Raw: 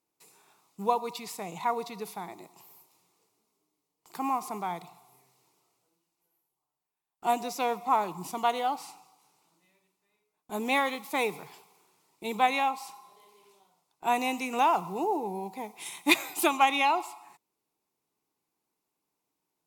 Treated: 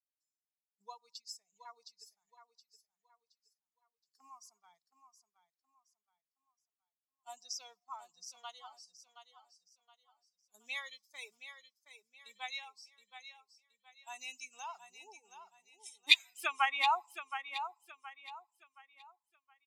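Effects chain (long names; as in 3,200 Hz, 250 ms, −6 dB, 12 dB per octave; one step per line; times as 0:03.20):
spectral dynamics exaggerated over time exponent 2
low-shelf EQ 400 Hz −11 dB
noise gate −53 dBFS, range −9 dB
band-pass filter sweep 5,300 Hz → 210 Hz, 0:15.84–0:18.14
on a send: repeating echo 721 ms, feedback 33%, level −10 dB
on the sum: level +6.5 dB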